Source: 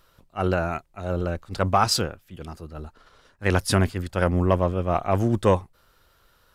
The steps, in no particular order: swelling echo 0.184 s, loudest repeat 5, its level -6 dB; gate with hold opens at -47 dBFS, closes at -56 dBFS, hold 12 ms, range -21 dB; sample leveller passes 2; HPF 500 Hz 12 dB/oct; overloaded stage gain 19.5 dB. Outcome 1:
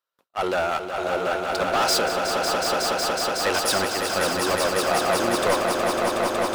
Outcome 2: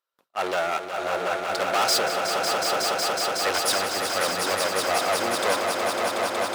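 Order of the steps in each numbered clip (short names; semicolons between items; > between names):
sample leveller > HPF > overloaded stage > swelling echo > gate with hold; sample leveller > overloaded stage > swelling echo > gate with hold > HPF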